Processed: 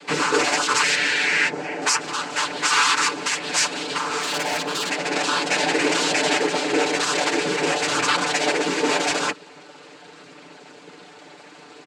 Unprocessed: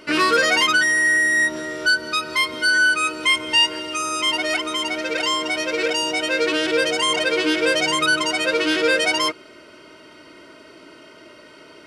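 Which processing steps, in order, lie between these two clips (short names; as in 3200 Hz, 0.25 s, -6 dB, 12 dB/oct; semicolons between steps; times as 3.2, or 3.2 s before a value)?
tracing distortion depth 0.33 ms; limiter -12.5 dBFS, peak gain reduction 4 dB; noise vocoder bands 8; 0.95–1.82 high shelf 4200 Hz -12 dB; 4.21–4.91 hard clip -22.5 dBFS, distortion -23 dB; frequency shift -17 Hz; HPF 200 Hz 6 dB/oct; comb 6.8 ms, depth 76%; 5.51–6.38 fast leveller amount 50%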